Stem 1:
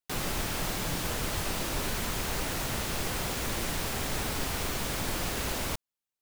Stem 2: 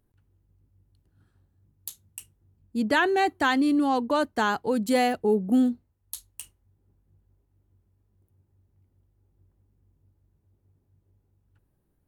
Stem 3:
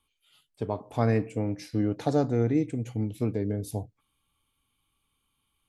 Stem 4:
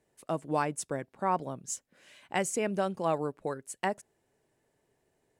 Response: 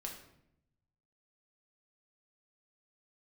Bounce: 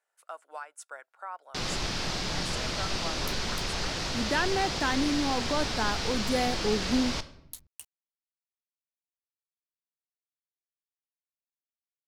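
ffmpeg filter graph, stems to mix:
-filter_complex "[0:a]lowpass=f=5k:t=q:w=2.3,adelay=1450,volume=-3.5dB,asplit=2[a][b];[b]volume=-4dB[c];[1:a]aeval=exprs='val(0)*gte(abs(val(0)),0.00631)':c=same,adelay=1400,volume=-6dB[d];[3:a]highpass=f=650:w=0.5412,highpass=f=650:w=1.3066,equalizer=f=1.4k:t=o:w=0.29:g=14,alimiter=limit=-22dB:level=0:latency=1:release=315,volume=-6.5dB[e];[4:a]atrim=start_sample=2205[f];[c][f]afir=irnorm=-1:irlink=0[g];[a][d][e][g]amix=inputs=4:normalize=0"

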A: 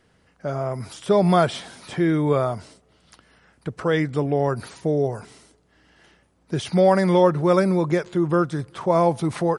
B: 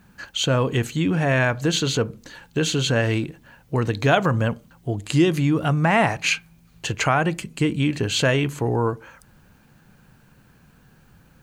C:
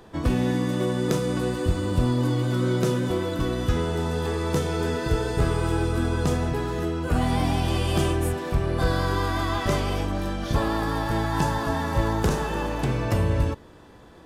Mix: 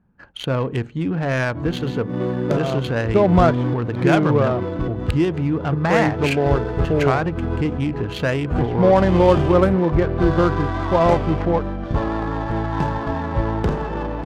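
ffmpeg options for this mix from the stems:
-filter_complex "[0:a]lowpass=2.9k,adelay=2050,volume=2dB[a];[1:a]agate=range=-7dB:threshold=-44dB:ratio=16:detection=peak,volume=-1dB,asplit=2[b][c];[2:a]adelay=1400,volume=2.5dB[d];[c]apad=whole_len=690191[e];[d][e]sidechaincompress=threshold=-28dB:ratio=8:attack=7.7:release=148[f];[a][b][f]amix=inputs=3:normalize=0,adynamicsmooth=sensitivity=1:basefreq=1.1k"

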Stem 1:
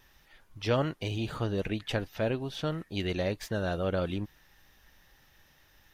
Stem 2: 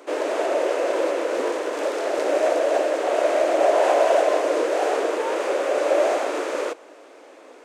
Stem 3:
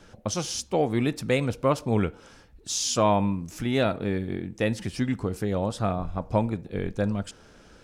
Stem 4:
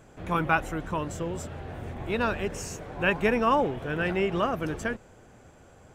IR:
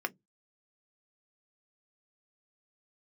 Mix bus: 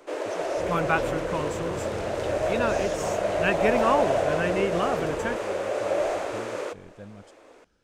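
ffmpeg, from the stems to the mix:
-filter_complex "[0:a]adelay=350,volume=-9.5dB[a];[1:a]volume=-6dB[b];[2:a]volume=-17.5dB[c];[3:a]adelay=400,volume=-0.5dB[d];[a][b][c][d]amix=inputs=4:normalize=0"

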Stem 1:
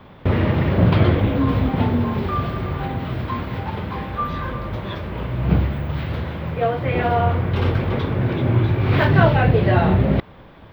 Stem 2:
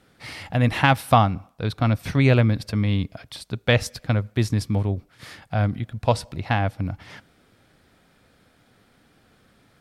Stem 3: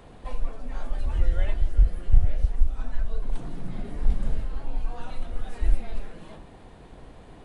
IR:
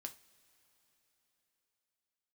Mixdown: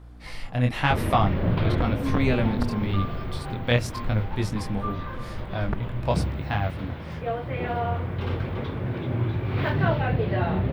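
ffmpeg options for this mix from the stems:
-filter_complex "[0:a]adelay=650,volume=-8.5dB[a];[1:a]aeval=exprs='val(0)+0.0112*(sin(2*PI*60*n/s)+sin(2*PI*2*60*n/s)/2+sin(2*PI*3*60*n/s)/3+sin(2*PI*4*60*n/s)/4+sin(2*PI*5*60*n/s)/5)':c=same,flanger=delay=18.5:depth=6.5:speed=0.94,volume=-2dB[b];[2:a]aeval=exprs='(mod(2.51*val(0)+1,2)-1)/2.51':c=same,lowpass=f=1.4k:t=q:w=1.8,volume=-11.5dB[c];[a][b][c]amix=inputs=3:normalize=0"

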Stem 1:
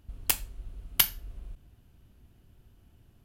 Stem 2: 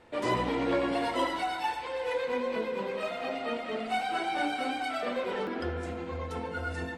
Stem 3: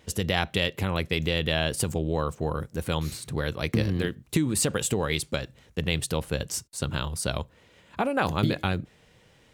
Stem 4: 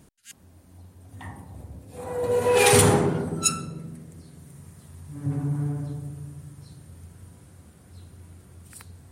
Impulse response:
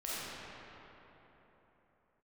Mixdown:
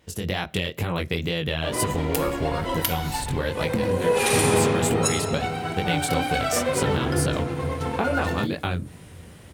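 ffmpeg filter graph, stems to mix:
-filter_complex "[0:a]adelay=1850,volume=-5.5dB,asplit=2[a][b];[b]volume=-17.5dB[c];[1:a]aeval=exprs='sgn(val(0))*max(abs(val(0))-0.00355,0)':c=same,adelay=1500,volume=-1dB,afade=t=in:st=5.78:d=0.53:silence=0.421697[d];[2:a]lowpass=f=2.4k:p=1,aemphasis=mode=production:type=50fm,flanger=delay=17.5:depth=6.8:speed=2.2,volume=1.5dB[e];[3:a]adelay=1600,volume=-7dB,asplit=2[f][g];[g]volume=-10dB[h];[a][e][f]amix=inputs=3:normalize=0,acompressor=threshold=-32dB:ratio=6,volume=0dB[i];[4:a]atrim=start_sample=2205[j];[c][h]amix=inputs=2:normalize=0[k];[k][j]afir=irnorm=-1:irlink=0[l];[d][i][l]amix=inputs=3:normalize=0,dynaudnorm=f=140:g=3:m=9.5dB"

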